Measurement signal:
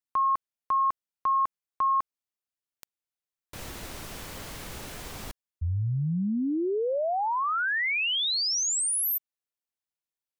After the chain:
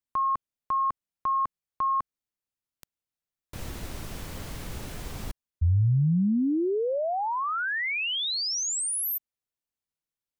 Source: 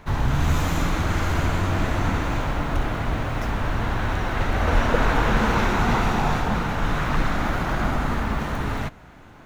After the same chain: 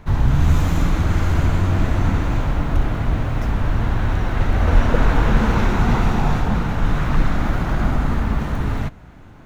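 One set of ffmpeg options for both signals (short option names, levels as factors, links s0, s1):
-af "lowshelf=f=290:g=9,volume=0.794"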